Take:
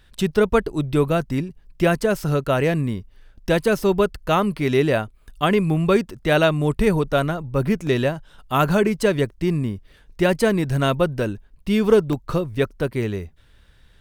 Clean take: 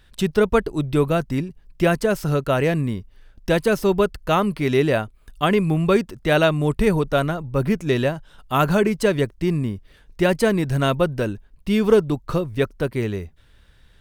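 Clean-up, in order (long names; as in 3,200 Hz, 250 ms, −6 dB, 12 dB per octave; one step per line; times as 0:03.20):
repair the gap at 0:07.87/0:12.13, 1.3 ms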